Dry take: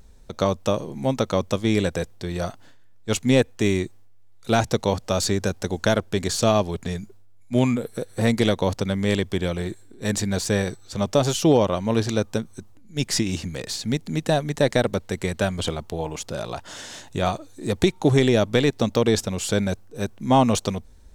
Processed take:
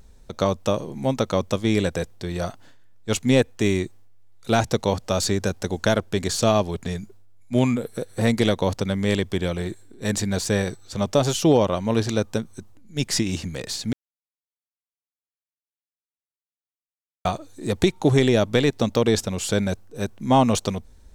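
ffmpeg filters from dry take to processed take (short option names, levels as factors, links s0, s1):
-filter_complex "[0:a]asplit=3[s0][s1][s2];[s0]atrim=end=13.93,asetpts=PTS-STARTPTS,afade=t=out:st=13.926:d=0.004:c=hsin[s3];[s1]atrim=start=13.93:end=17.25,asetpts=PTS-STARTPTS,volume=0[s4];[s2]atrim=start=17.25,asetpts=PTS-STARTPTS,afade=t=in:d=0.004:c=hsin[s5];[s3][s4][s5]concat=n=3:v=0:a=1"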